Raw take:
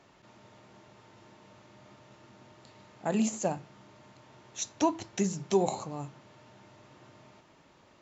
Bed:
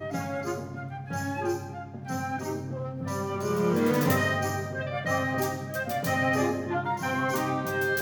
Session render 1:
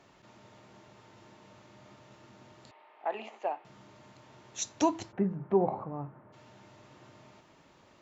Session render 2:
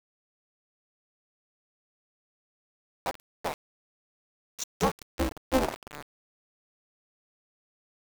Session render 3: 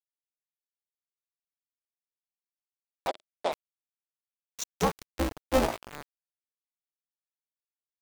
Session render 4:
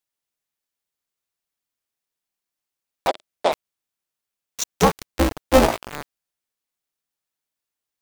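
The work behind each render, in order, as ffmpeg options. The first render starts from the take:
-filter_complex "[0:a]asettb=1/sr,asplit=3[a][b][c];[a]atrim=end=2.714[d];[b]atrim=start=2.71:end=3.65,asetpts=PTS-STARTPTS,afade=t=in:d=0.004:c=qsin,afade=t=out:st=0.936:d=0.004:c=qsin,highpass=f=450:w=0.5412,highpass=f=450:w=1.3066,equalizer=f=520:t=q:w=4:g=-7,equalizer=f=820:t=q:w=4:g=4,equalizer=f=1.5k:t=q:w=4:g=-5,lowpass=f=2.8k:w=0.5412,lowpass=f=2.8k:w=1.3066[e];[c]atrim=start=3.646[f];[d][e]acrossfade=d=0.004:c1=hsin:c2=qsin[g];[g][f]acrossfade=d=0.004:c1=qsin:c2=hsin,asplit=3[h][i][j];[h]afade=t=out:st=5.11:d=0.02[k];[i]lowpass=f=1.6k:w=0.5412,lowpass=f=1.6k:w=1.3066,afade=t=in:st=5.11:d=0.02,afade=t=out:st=6.32:d=0.02[l];[j]afade=t=in:st=6.32:d=0.02[m];[k][l][m]amix=inputs=3:normalize=0"
-af "aeval=exprs='val(0)*gte(abs(val(0)),0.0266)':c=same,aeval=exprs='val(0)*sgn(sin(2*PI*130*n/s))':c=same"
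-filter_complex "[0:a]asplit=3[a][b][c];[a]afade=t=out:st=3.07:d=0.02[d];[b]highpass=230,equalizer=f=360:t=q:w=4:g=4,equalizer=f=620:t=q:w=4:g=9,equalizer=f=1.7k:t=q:w=4:g=-4,equalizer=f=3.5k:t=q:w=4:g=7,equalizer=f=6.1k:t=q:w=4:g=-5,lowpass=f=8.2k:w=0.5412,lowpass=f=8.2k:w=1.3066,afade=t=in:st=3.07:d=0.02,afade=t=out:st=3.51:d=0.02[e];[c]afade=t=in:st=3.51:d=0.02[f];[d][e][f]amix=inputs=3:normalize=0,asettb=1/sr,asplit=3[g][h][i];[g]atrim=end=5.534[j];[h]atrim=start=5.53:end=5.94,asetpts=PTS-STARTPTS,afade=t=in:d=0.004:c=qsin,afade=t=out:st=0.406:d=0.004:c=qsin,asplit=2[k][l];[l]adelay=17,volume=-3.5dB[m];[k][m]amix=inputs=2:normalize=0,atrim=end_sample=18081[n];[i]atrim=start=5.936[o];[j][n]acrossfade=d=0.004:c1=hsin:c2=qsin[p];[p][o]acrossfade=d=0.004:c1=qsin:c2=hsin"
-af "volume=10dB"

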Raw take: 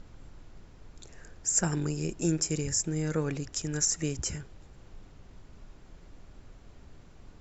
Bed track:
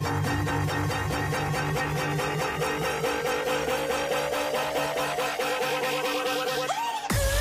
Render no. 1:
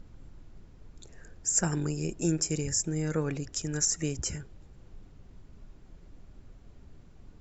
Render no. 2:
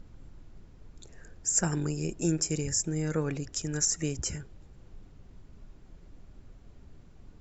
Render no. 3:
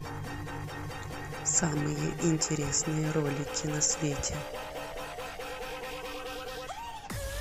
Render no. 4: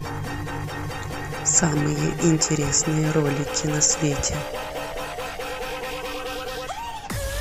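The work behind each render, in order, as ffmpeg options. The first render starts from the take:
-af "afftdn=nr=6:nf=-53"
-af anull
-filter_complex "[1:a]volume=-12dB[a];[0:a][a]amix=inputs=2:normalize=0"
-af "volume=8.5dB"

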